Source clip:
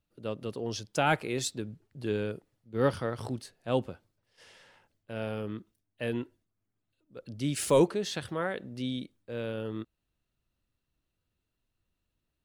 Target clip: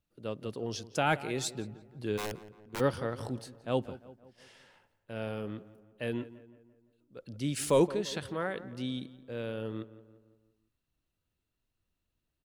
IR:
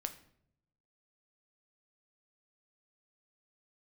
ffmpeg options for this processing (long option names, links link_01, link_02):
-filter_complex "[0:a]asplit=3[link_01][link_02][link_03];[link_01]afade=type=out:start_time=2.17:duration=0.02[link_04];[link_02]aeval=exprs='(mod(25.1*val(0)+1,2)-1)/25.1':channel_layout=same,afade=type=in:start_time=2.17:duration=0.02,afade=type=out:start_time=2.79:duration=0.02[link_05];[link_03]afade=type=in:start_time=2.79:duration=0.02[link_06];[link_04][link_05][link_06]amix=inputs=3:normalize=0,asplit=2[link_07][link_08];[link_08]adelay=171,lowpass=frequency=2200:poles=1,volume=-16dB,asplit=2[link_09][link_10];[link_10]adelay=171,lowpass=frequency=2200:poles=1,volume=0.52,asplit=2[link_11][link_12];[link_12]adelay=171,lowpass=frequency=2200:poles=1,volume=0.52,asplit=2[link_13][link_14];[link_14]adelay=171,lowpass=frequency=2200:poles=1,volume=0.52,asplit=2[link_15][link_16];[link_16]adelay=171,lowpass=frequency=2200:poles=1,volume=0.52[link_17];[link_07][link_09][link_11][link_13][link_15][link_17]amix=inputs=6:normalize=0,volume=-2dB"